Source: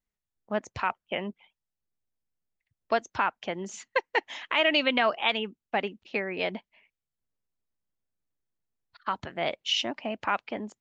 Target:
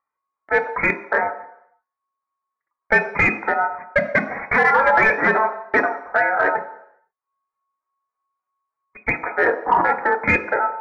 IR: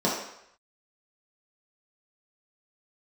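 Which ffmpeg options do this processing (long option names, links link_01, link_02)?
-filter_complex "[0:a]aeval=exprs='val(0)*sin(2*PI*1400*n/s)':channel_layout=same,flanger=delay=1.6:depth=4.2:regen=-7:speed=0.28:shape=triangular,lowpass=frequency=2100:width_type=q:width=0.5098,lowpass=frequency=2100:width_type=q:width=0.6013,lowpass=frequency=2100:width_type=q:width=0.9,lowpass=frequency=2100:width_type=q:width=2.563,afreqshift=-2500,asplit=2[link_01][link_02];[link_02]asoftclip=type=hard:threshold=-31dB,volume=-5.5dB[link_03];[link_01][link_03]amix=inputs=2:normalize=0,aemphasis=mode=reproduction:type=75kf,acompressor=mode=upward:threshold=-53dB:ratio=2.5,agate=range=-29dB:threshold=-59dB:ratio=16:detection=peak,asplit=2[link_04][link_05];[1:a]atrim=start_sample=2205,adelay=24[link_06];[link_05][link_06]afir=irnorm=-1:irlink=0,volume=-23dB[link_07];[link_04][link_07]amix=inputs=2:normalize=0,alimiter=level_in=23dB:limit=-1dB:release=50:level=0:latency=1,volume=-5.5dB"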